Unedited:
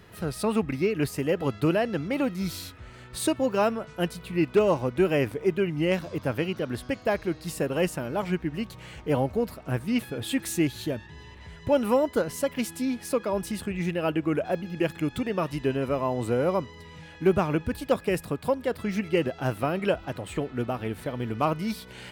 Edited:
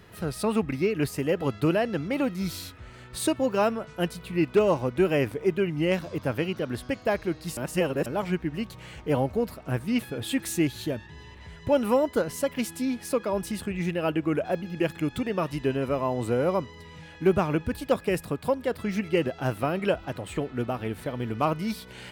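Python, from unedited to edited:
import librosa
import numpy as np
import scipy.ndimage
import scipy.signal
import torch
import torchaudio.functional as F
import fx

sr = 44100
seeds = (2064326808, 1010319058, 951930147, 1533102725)

y = fx.edit(x, sr, fx.reverse_span(start_s=7.57, length_s=0.49), tone=tone)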